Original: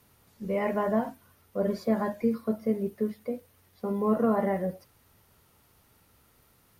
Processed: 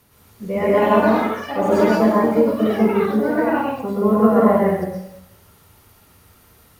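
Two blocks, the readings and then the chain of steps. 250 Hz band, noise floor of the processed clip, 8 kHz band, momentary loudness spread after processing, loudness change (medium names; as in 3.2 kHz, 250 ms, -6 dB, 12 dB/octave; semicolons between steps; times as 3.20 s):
+11.5 dB, -52 dBFS, no reading, 9 LU, +12.0 dB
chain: plate-style reverb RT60 0.78 s, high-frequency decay 0.95×, pre-delay 105 ms, DRR -5 dB; ever faster or slower copies 387 ms, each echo +6 st, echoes 3, each echo -6 dB; trim +5 dB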